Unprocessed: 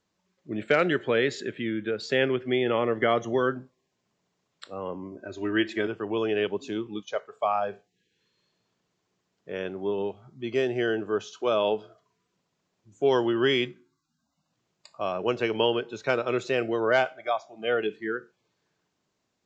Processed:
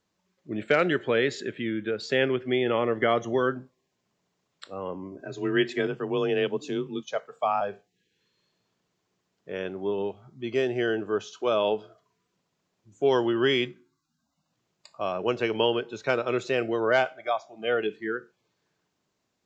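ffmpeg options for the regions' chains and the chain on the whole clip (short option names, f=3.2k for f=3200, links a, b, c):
-filter_complex "[0:a]asettb=1/sr,asplit=3[a][b][c];[a]atrim=end=5.194[d];[b]atrim=start=5.19:end=7.61,asetpts=PTS-STARTPTS,afade=t=in:d=0.004:c=qsin,afade=t=out:st=2.416:d=0.004:c=qsin,bass=f=250:g=5,treble=f=4k:g=3,afreqshift=26[e];[c]atrim=start=7.606[f];[d][e]acrossfade=d=0.004:c1=hsin:c2=qsin[g];[g][f]acrossfade=d=0.004:c1=qsin:c2=hsin"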